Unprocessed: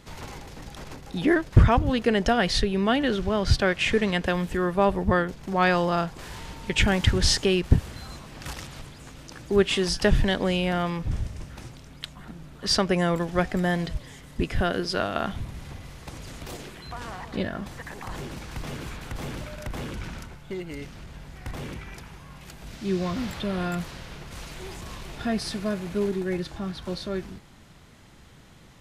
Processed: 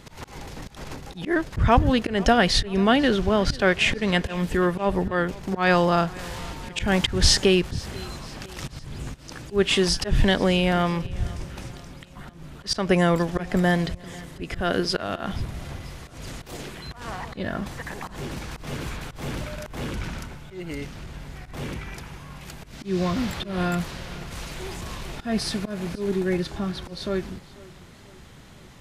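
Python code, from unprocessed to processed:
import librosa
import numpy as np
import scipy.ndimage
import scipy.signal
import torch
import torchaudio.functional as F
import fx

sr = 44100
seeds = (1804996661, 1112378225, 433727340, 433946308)

y = fx.low_shelf(x, sr, hz=230.0, db=11.0, at=(8.63, 9.15), fade=0.02)
y = fx.auto_swell(y, sr, attack_ms=166.0)
y = fx.echo_feedback(y, sr, ms=492, feedback_pct=52, wet_db=-21.5)
y = y * librosa.db_to_amplitude(4.0)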